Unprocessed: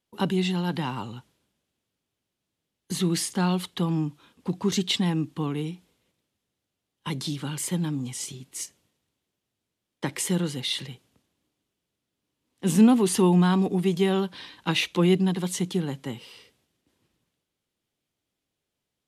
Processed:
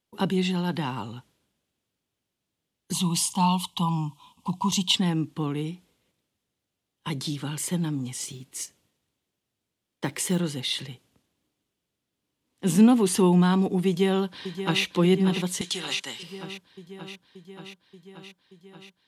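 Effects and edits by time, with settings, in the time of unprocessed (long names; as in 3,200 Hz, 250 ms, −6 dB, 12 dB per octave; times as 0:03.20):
0:02.93–0:04.95: drawn EQ curve 200 Hz 0 dB, 420 Hz −15 dB, 630 Hz −5 dB, 1,000 Hz +14 dB, 1,500 Hz −23 dB, 2,900 Hz +6 dB, 4,300 Hz +1 dB, 7,800 Hz +5 dB, 13,000 Hz +3 dB
0:08.12–0:10.40: floating-point word with a short mantissa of 4 bits
0:13.87–0:14.83: delay throw 580 ms, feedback 75%, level −10 dB
0:15.61–0:16.23: meter weighting curve ITU-R 468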